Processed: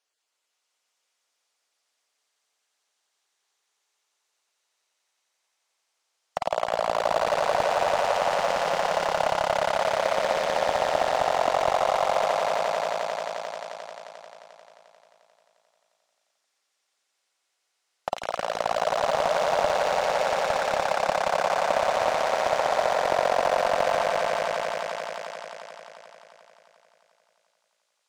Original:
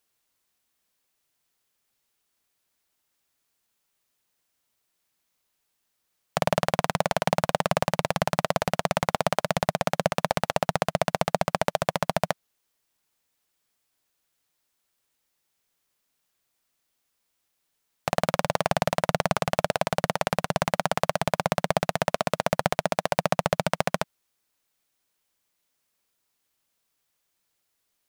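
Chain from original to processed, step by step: random spectral dropouts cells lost 24%; Chebyshev band-pass 560–6900 Hz, order 2; on a send: swelling echo 88 ms, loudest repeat 5, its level -5 dB; on the sum: slew limiter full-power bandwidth 160 Hz

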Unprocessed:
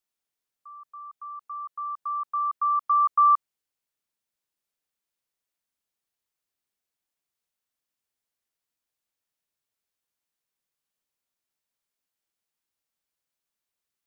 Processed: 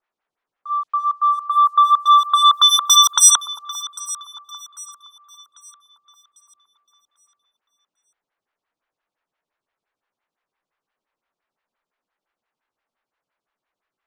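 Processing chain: sine folder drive 13 dB, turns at -13.5 dBFS; tilt shelf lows -9 dB, about 1300 Hz; sample leveller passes 1; low-pass opened by the level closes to 1300 Hz, open at -13.5 dBFS; echo with dull and thin repeats by turns 0.398 s, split 1200 Hz, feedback 62%, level -13.5 dB; photocell phaser 5.8 Hz; gain +4 dB

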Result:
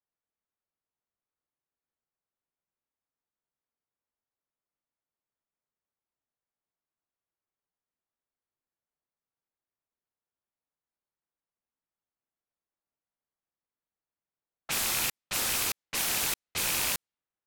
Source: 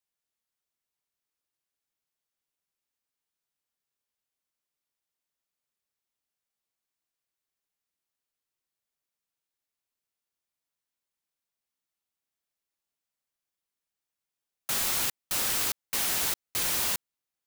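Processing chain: rattling part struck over -44 dBFS, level -21 dBFS; low-pass opened by the level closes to 1400 Hz, open at -26 dBFS

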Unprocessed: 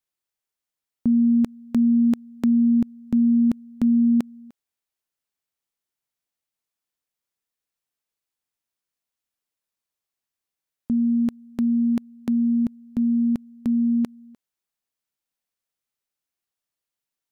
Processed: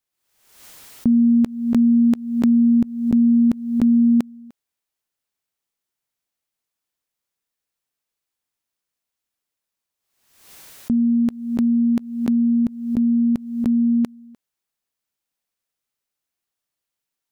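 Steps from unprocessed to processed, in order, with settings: backwards sustainer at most 72 dB/s; gain +3 dB

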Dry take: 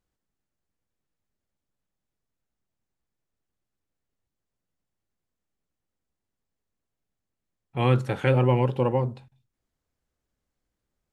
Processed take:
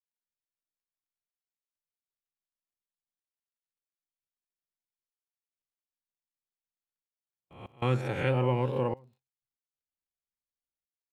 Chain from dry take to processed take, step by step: spectral swells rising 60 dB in 0.70 s; step gate ".xxxxxxx...x" 94 bpm -24 dB; crackle 43/s -55 dBFS; gate with hold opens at -42 dBFS; gain -7 dB

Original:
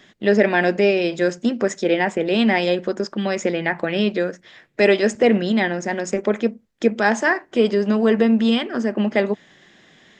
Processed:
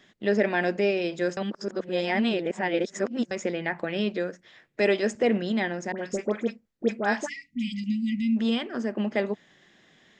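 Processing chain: 7.25–8.36 spectral delete 290–1900 Hz; 5.92–7.84 dispersion highs, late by 66 ms, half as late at 1500 Hz; 1.37–3.31 reverse; gain -7.5 dB

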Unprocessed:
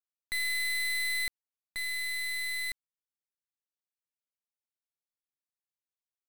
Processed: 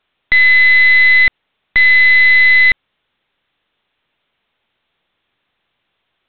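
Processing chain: high shelf 3100 Hz +5 dB; maximiser +29 dB; µ-law 64 kbps 8000 Hz

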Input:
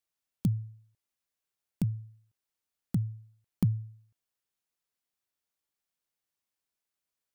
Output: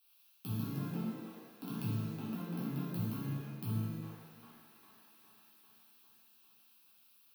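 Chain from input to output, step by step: half-wave gain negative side -12 dB; tilt +2.5 dB/oct; limiter -27.5 dBFS, peak gain reduction 10.5 dB; on a send: band-limited delay 0.402 s, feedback 69%, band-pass 1100 Hz, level -14.5 dB; on the sum: echoes that change speed 0.238 s, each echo +4 st, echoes 3; HPF 160 Hz 12 dB/oct; bell 2600 Hz +9.5 dB 0.24 oct; fixed phaser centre 2000 Hz, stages 6; reverse; compressor 6:1, threshold -54 dBFS, peak gain reduction 13.5 dB; reverse; shimmer reverb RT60 1.3 s, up +7 st, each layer -8 dB, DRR -8 dB; gain +11 dB

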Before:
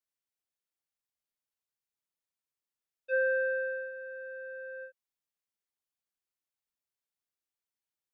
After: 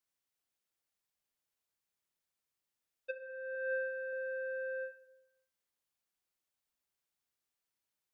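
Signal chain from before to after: negative-ratio compressor -35 dBFS, ratio -0.5; 3.55–4.13 low shelf 400 Hz -5.5 dB; reverb RT60 0.85 s, pre-delay 35 ms, DRR 11 dB; gain -1 dB

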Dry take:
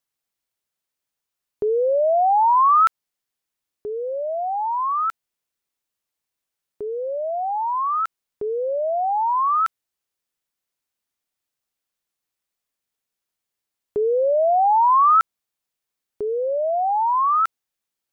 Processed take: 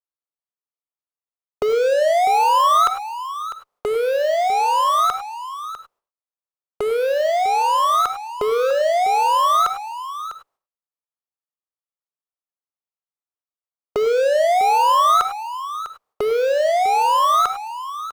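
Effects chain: per-bin compression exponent 0.6; gate -48 dBFS, range -41 dB; in parallel at -9 dB: fuzz box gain 37 dB, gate -45 dBFS; on the sum: sample leveller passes 1; on a send: echo 0.65 s -13 dB; on the sum: non-linear reverb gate 0.12 s rising, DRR 9 dB; gain -6.5 dB

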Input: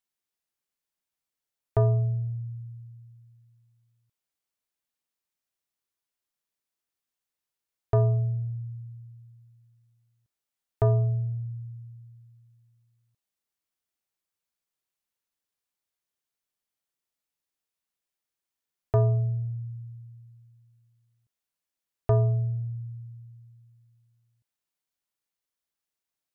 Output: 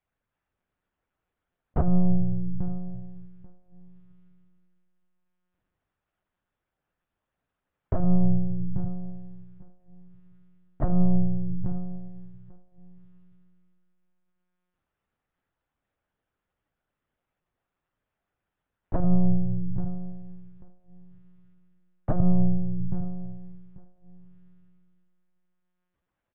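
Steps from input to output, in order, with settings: LPF 1500 Hz 12 dB/oct; low shelf 140 Hz +9 dB; negative-ratio compressor -20 dBFS, ratio -0.5; feedback echo 0.843 s, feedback 19%, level -16 dB; reverb, pre-delay 3 ms, DRR -7.5 dB; monotone LPC vocoder at 8 kHz 180 Hz; gain +2.5 dB

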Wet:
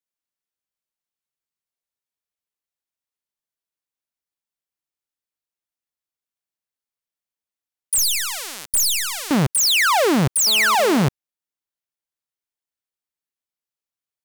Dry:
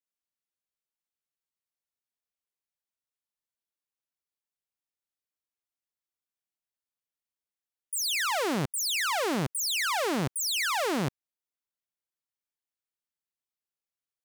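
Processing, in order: 7.98–9.31 differentiator; sample leveller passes 3; 10.47–11.07 GSM buzz -39 dBFS; gain +6.5 dB

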